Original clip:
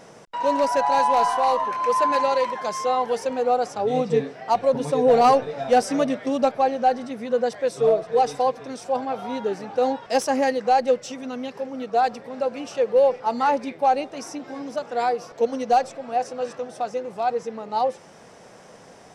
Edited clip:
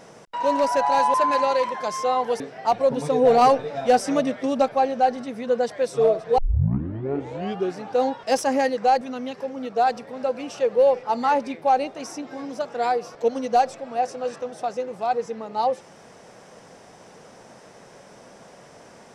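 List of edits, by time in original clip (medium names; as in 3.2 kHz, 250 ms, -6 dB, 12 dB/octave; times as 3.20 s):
1.14–1.95 s: delete
3.21–4.23 s: delete
8.21 s: tape start 1.40 s
10.84–11.18 s: delete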